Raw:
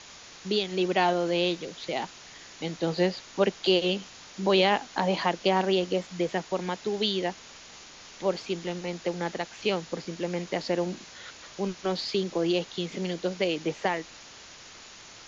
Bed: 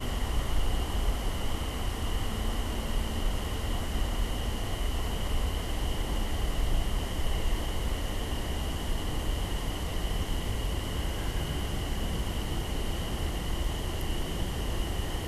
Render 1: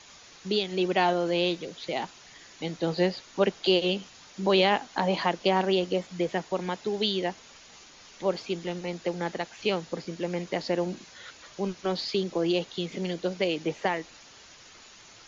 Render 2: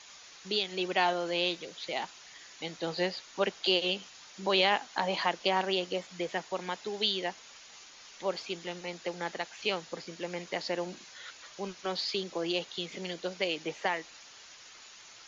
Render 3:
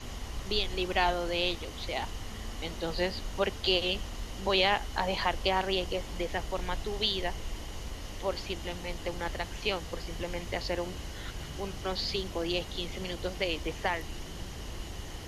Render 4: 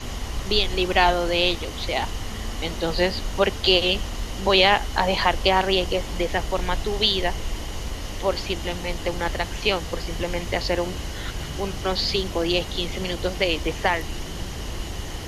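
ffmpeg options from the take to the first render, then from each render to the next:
-af "afftdn=nr=6:nf=-48"
-af "lowshelf=f=490:g=-12"
-filter_complex "[1:a]volume=-9dB[a];[0:a][a]amix=inputs=2:normalize=0"
-af "volume=9dB"

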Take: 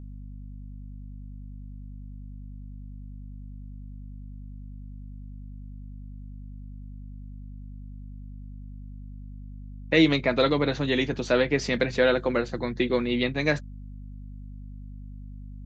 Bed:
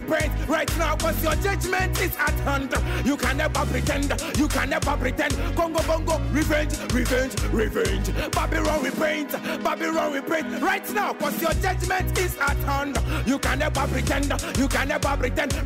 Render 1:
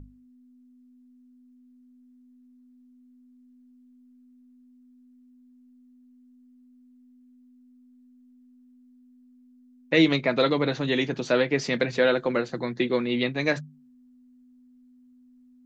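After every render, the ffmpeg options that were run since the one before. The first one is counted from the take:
-af "bandreject=f=50:t=h:w=6,bandreject=f=100:t=h:w=6,bandreject=f=150:t=h:w=6,bandreject=f=200:t=h:w=6"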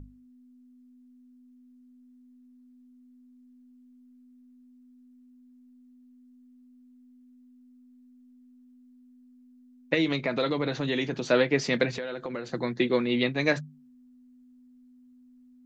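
-filter_complex "[0:a]asettb=1/sr,asplit=3[a][b][c];[a]atrim=end=9.944[d];[b]atrim=start=9.94:end=11.24,asetpts=PTS-STARTPTS,afade=t=in:d=0.004:c=qsin,afade=t=out:st=1.296:d=0.004:c=qsin,acompressor=threshold=-26dB:ratio=2:attack=3.2:release=140:knee=1:detection=peak[e];[c]atrim=start=11.236[f];[d][e]acrossfade=d=0.004:c1=hsin:c2=qsin[g];[g][f]acrossfade=d=0.004:c1=qsin:c2=hsin,asettb=1/sr,asplit=3[h][i][j];[h]atrim=end=11.954[k];[i]atrim=start=11.95:end=12.5,asetpts=PTS-STARTPTS,afade=t=in:d=0.004:c=qsin,afade=t=out:st=0.546:d=0.004:c=qsin,acompressor=threshold=-30dB:ratio=10:attack=3.2:release=140:knee=1:detection=peak[l];[j]atrim=start=12.496[m];[k][l]acrossfade=d=0.004:c1=hsin:c2=qsin[n];[n][m]acrossfade=d=0.004:c1=qsin:c2=hsin"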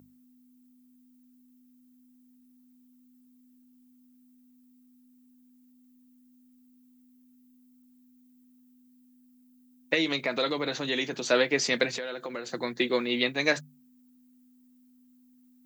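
-af "highpass=110,aemphasis=mode=production:type=bsi"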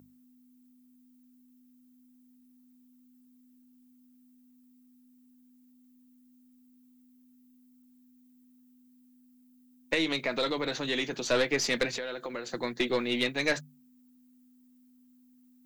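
-af "aeval=exprs='(tanh(7.94*val(0)+0.3)-tanh(0.3))/7.94':c=same"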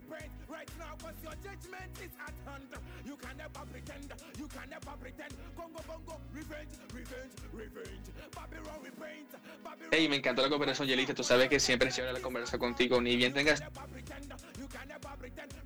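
-filter_complex "[1:a]volume=-23.5dB[a];[0:a][a]amix=inputs=2:normalize=0"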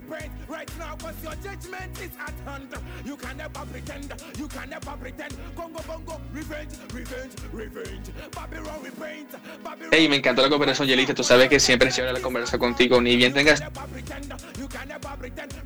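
-af "volume=11dB"

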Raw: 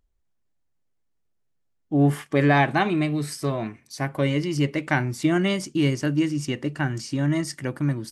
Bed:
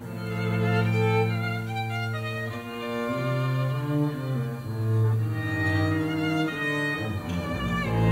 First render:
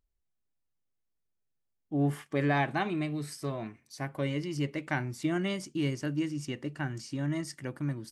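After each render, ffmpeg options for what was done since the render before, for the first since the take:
-af "volume=-9dB"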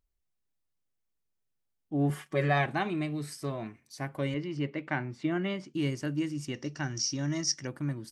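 -filter_complex "[0:a]asettb=1/sr,asplit=3[a][b][c];[a]atrim=end=2.094[d];[b]atrim=start=2.09:end=2.66,asetpts=PTS-STARTPTS,afade=t=in:d=0.004:c=qsin,afade=t=out:st=0.566:d=0.004:c=qsin,aecho=1:1:5.4:0.65,atrim=end_sample=25137[e];[c]atrim=start=2.656[f];[d][e]acrossfade=d=0.004:c1=hsin:c2=qsin[g];[g][f]acrossfade=d=0.004:c1=qsin:c2=hsin,asettb=1/sr,asplit=3[h][i][j];[h]atrim=end=4.344[k];[i]atrim=start=4.34:end=5.74,asetpts=PTS-STARTPTS,afade=t=in:d=0.004:c=qsin,afade=t=out:st=1.396:d=0.004:c=qsin,highpass=120,lowpass=3.3k[l];[j]atrim=start=5.736[m];[k][l]acrossfade=d=0.004:c1=hsin:c2=qsin[n];[n][m]acrossfade=d=0.004:c1=qsin:c2=hsin,asettb=1/sr,asplit=3[o][p][q];[o]atrim=end=6.544[r];[p]atrim=start=6.54:end=7.67,asetpts=PTS-STARTPTS,afade=t=in:d=0.004:c=qsin,afade=t=out:st=1.126:d=0.004:c=qsin,lowpass=f=5.7k:t=q:w=15[s];[q]atrim=start=7.666[t];[r][s]acrossfade=d=0.004:c1=hsin:c2=qsin[u];[u][t]acrossfade=d=0.004:c1=qsin:c2=hsin"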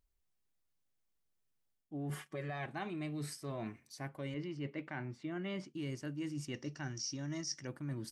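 -af "alimiter=limit=-21.5dB:level=0:latency=1:release=233,areverse,acompressor=threshold=-38dB:ratio=6,areverse"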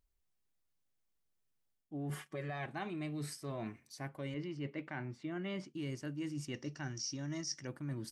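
-af anull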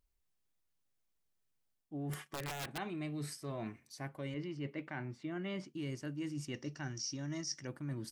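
-filter_complex "[0:a]asettb=1/sr,asplit=3[a][b][c];[a]atrim=end=2.134[d];[b]atrim=start=2.13:end=2.78,asetpts=PTS-STARTPTS,afade=t=in:d=0.004:c=qsin,afade=t=out:st=0.646:d=0.004:c=qsin,aeval=exprs='(mod(53.1*val(0)+1,2)-1)/53.1':c=same[e];[c]atrim=start=2.776[f];[d][e]acrossfade=d=0.004:c1=hsin:c2=qsin[g];[g][f]acrossfade=d=0.004:c1=qsin:c2=hsin"

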